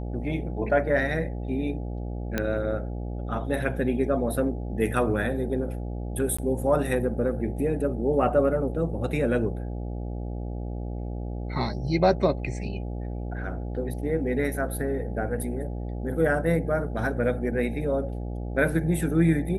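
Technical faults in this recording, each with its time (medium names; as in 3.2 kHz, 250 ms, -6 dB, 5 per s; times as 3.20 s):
buzz 60 Hz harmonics 14 -32 dBFS
2.38 s: pop -12 dBFS
6.37–6.38 s: dropout 15 ms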